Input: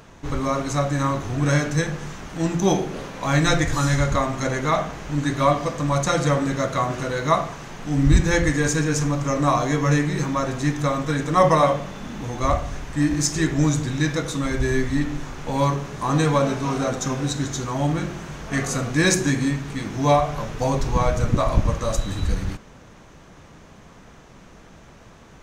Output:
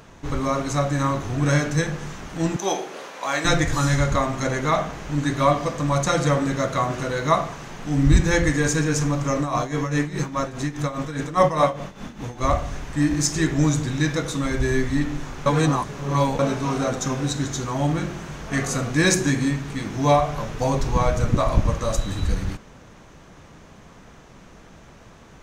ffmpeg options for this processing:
-filter_complex "[0:a]asettb=1/sr,asplit=3[a][b][c];[a]atrim=end=2.564[d];[b]atrim=start=2.56:end=3.45,asetpts=PTS-STARTPTS,afade=t=in:d=0.004:c=qsin,afade=t=out:st=0.886:d=0.004:c=qsin,highpass=490[e];[c]atrim=start=3.446[f];[d][e]acrossfade=d=0.004:c1=hsin:c2=qsin[g];[g][f]acrossfade=d=0.004:c1=qsin:c2=hsin,asplit=3[h][i][j];[h]afade=t=out:st=9.38:d=0.02[k];[i]tremolo=f=4.9:d=0.73,afade=t=in:st=9.38:d=0.02,afade=t=out:st=12.45:d=0.02[l];[j]afade=t=in:st=12.45:d=0.02[m];[k][l][m]amix=inputs=3:normalize=0,asplit=3[n][o][p];[n]atrim=end=15.462[q];[o]atrim=start=15.458:end=16.392,asetpts=PTS-STARTPTS,areverse[r];[p]atrim=start=16.388[s];[q][r]acrossfade=d=0.004:c1=hsin:c2=hsin[t];[t][s]acrossfade=d=0.004:c1=hsin:c2=hsin"

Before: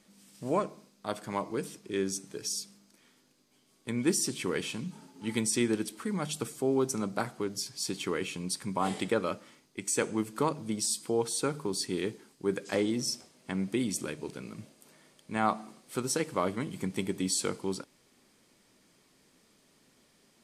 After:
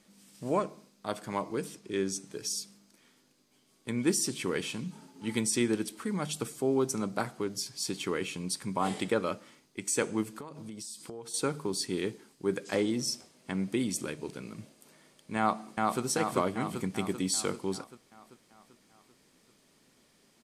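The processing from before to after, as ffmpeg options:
-filter_complex "[0:a]asettb=1/sr,asplit=3[a][b][c];[a]atrim=end=1.754[d];[b]atrim=start=1.75:end=2.31,asetpts=PTS-STARTPTS,afade=t=in:d=0.004:c=qsin,afade=t=out:st=0.556:d=0.004:c=qsin,lowpass=11k[e];[c]atrim=start=2.306[f];[d][e]acrossfade=d=0.004:c1=hsin:c2=qsin[g];[g][f]acrossfade=d=0.004:c1=qsin:c2=hsin,asettb=1/sr,asplit=3[h][i][j];[h]atrim=end=10.294[k];[i]atrim=start=10.29:end=11.34,asetpts=PTS-STARTPTS,afade=t=in:d=0.004:c=qsin,afade=t=out:st=1.046:d=0.004:c=qsin,acompressor=threshold=-39dB:ratio=8:attack=3.2:release=140:knee=1:detection=peak[l];[j]atrim=start=11.336[m];[k][l]acrossfade=d=0.004:c1=hsin:c2=qsin[n];[n][m]acrossfade=d=0.004:c1=qsin:c2=hsin,asplit=2[o][p];[p]afade=t=in:st=15.38:d=0.01,afade=t=out:st=16.02:d=0.01,aecho=0:1:390|780|1170|1560|1950|2340|2730|3120|3510:0.841395|0.504837|0.302902|0.181741|0.109045|0.0654269|0.0392561|0.0235537|0.0141322[q];[o][q]amix=inputs=2:normalize=0"

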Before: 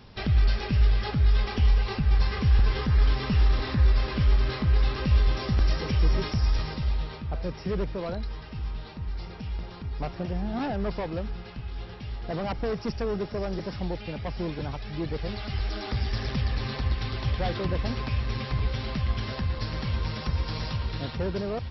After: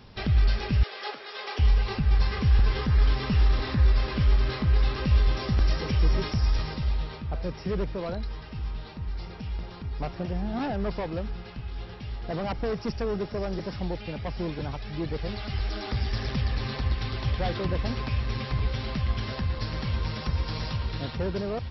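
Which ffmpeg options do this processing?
-filter_complex "[0:a]asettb=1/sr,asplit=3[a][b][c];[a]atrim=end=0.834[d];[b]atrim=start=0.83:end=1.59,asetpts=PTS-STARTPTS,afade=t=in:d=0.004:c=qsin,afade=t=out:st=0.756:d=0.004:c=qsin,highpass=f=410:w=0.5412,highpass=f=410:w=1.3066[e];[c]atrim=start=1.586[f];[d][e]acrossfade=d=0.004:c1=hsin:c2=qsin[g];[g][f]acrossfade=d=0.004:c1=qsin:c2=hsin"

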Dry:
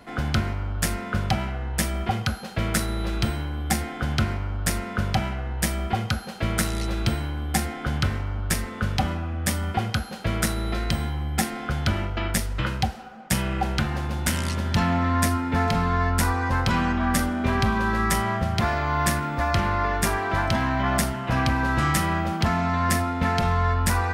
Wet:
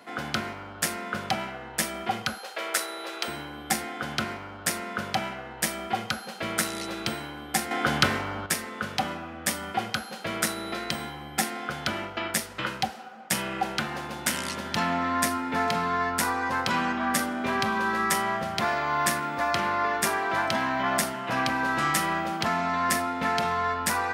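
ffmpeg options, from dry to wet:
-filter_complex "[0:a]asettb=1/sr,asplit=3[a][b][c];[a]atrim=end=2.384[d];[b]atrim=start=2.38:end=3.28,asetpts=PTS-STARTPTS,afade=t=in:d=0.004:c=qsin,afade=t=out:st=0.896:d=0.004:c=qsin,highpass=f=390:w=0.5412,highpass=f=390:w=1.3066[e];[c]atrim=start=3.276[f];[d][e]acrossfade=d=0.004:c1=hsin:c2=qsin[g];[g][f]acrossfade=d=0.004:c1=qsin:c2=hsin,asplit=3[h][i][j];[h]atrim=end=7.712[k];[i]atrim=start=7.708:end=8.462,asetpts=PTS-STARTPTS,volume=8dB[l];[j]atrim=start=8.458[m];[k][l]acrossfade=d=0.004:c1=hsin:c2=hsin[n];[n][m]acrossfade=d=0.004:c1=hsin:c2=hsin,highpass=200,lowshelf=f=320:g=-6"

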